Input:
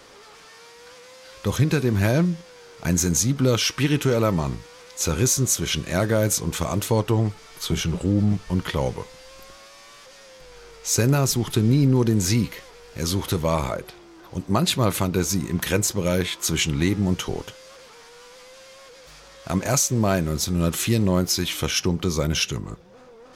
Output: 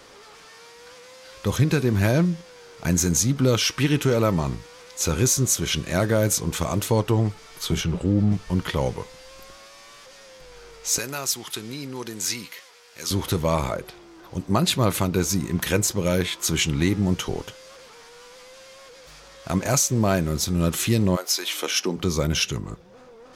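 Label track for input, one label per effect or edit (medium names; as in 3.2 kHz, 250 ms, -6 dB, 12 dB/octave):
7.810000	8.320000	treble shelf 5 kHz -8 dB
10.980000	13.110000	high-pass 1.5 kHz 6 dB/octave
21.150000	21.960000	high-pass 590 Hz -> 200 Hz 24 dB/octave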